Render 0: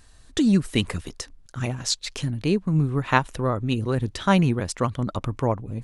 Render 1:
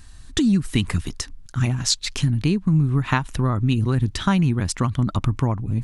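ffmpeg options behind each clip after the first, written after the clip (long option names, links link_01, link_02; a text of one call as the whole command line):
ffmpeg -i in.wav -af "lowshelf=frequency=380:gain=5,acompressor=threshold=-19dB:ratio=6,equalizer=frequency=510:width_type=o:width=0.92:gain=-11,volume=5dB" out.wav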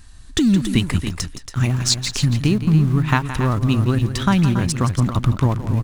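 ffmpeg -i in.wav -filter_complex "[0:a]asplit=2[link_01][link_02];[link_02]aeval=exprs='val(0)*gte(abs(val(0)),0.0668)':channel_layout=same,volume=-10dB[link_03];[link_01][link_03]amix=inputs=2:normalize=0,aecho=1:1:169.1|279.9:0.251|0.316" out.wav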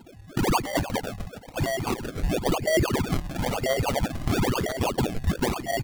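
ffmpeg -i in.wav -af "afftfilt=real='real(if(lt(b,272),68*(eq(floor(b/68),0)*3+eq(floor(b/68),1)*2+eq(floor(b/68),2)*1+eq(floor(b/68),3)*0)+mod(b,68),b),0)':imag='imag(if(lt(b,272),68*(eq(floor(b/68),0)*3+eq(floor(b/68),1)*2+eq(floor(b/68),2)*1+eq(floor(b/68),3)*0)+mod(b,68),b),0)':win_size=2048:overlap=0.75,acrusher=samples=33:mix=1:aa=0.000001:lfo=1:lforange=33:lforate=1,flanger=delay=0.2:depth=1.4:regen=-40:speed=0.4:shape=triangular,volume=-4.5dB" out.wav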